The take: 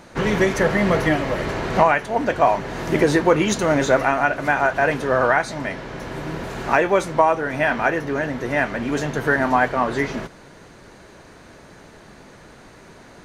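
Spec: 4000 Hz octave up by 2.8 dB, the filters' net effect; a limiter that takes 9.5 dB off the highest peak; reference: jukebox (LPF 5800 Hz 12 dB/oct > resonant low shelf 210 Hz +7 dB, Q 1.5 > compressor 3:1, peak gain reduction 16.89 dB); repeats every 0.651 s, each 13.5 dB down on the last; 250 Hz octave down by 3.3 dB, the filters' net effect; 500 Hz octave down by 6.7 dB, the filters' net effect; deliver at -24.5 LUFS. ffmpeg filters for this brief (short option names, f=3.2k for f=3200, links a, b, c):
-af "equalizer=f=250:t=o:g=-7.5,equalizer=f=500:t=o:g=-6,equalizer=f=4k:t=o:g=4.5,alimiter=limit=-12.5dB:level=0:latency=1,lowpass=5.8k,lowshelf=f=210:t=q:w=1.5:g=7,aecho=1:1:651|1302:0.211|0.0444,acompressor=threshold=-38dB:ratio=3,volume=13dB"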